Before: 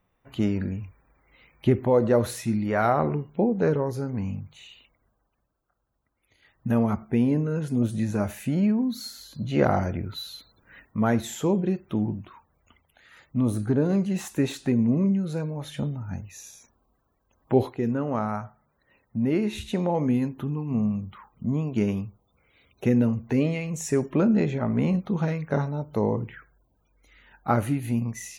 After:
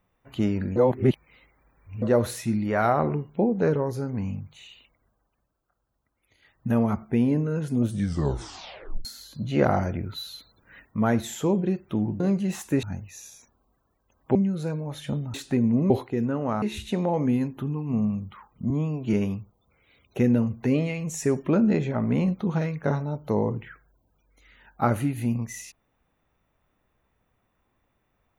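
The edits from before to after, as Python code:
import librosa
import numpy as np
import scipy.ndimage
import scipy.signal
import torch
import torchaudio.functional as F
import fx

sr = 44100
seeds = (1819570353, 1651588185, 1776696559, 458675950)

y = fx.edit(x, sr, fx.reverse_span(start_s=0.76, length_s=1.26),
    fx.tape_stop(start_s=7.91, length_s=1.14),
    fx.cut(start_s=12.2, length_s=1.66),
    fx.swap(start_s=14.49, length_s=0.56, other_s=16.04, other_length_s=1.52),
    fx.cut(start_s=18.28, length_s=1.15),
    fx.stretch_span(start_s=21.51, length_s=0.29, factor=1.5), tone=tone)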